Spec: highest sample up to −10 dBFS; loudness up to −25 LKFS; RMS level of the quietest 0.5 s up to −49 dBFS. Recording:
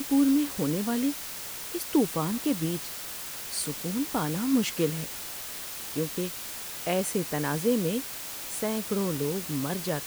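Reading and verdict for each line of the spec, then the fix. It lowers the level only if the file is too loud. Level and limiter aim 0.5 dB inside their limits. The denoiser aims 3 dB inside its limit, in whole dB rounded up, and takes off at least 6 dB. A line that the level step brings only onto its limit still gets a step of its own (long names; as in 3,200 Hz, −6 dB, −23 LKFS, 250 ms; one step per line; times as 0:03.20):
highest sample −13.0 dBFS: in spec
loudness −29.0 LKFS: in spec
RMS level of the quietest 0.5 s −38 dBFS: out of spec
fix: broadband denoise 14 dB, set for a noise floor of −38 dBFS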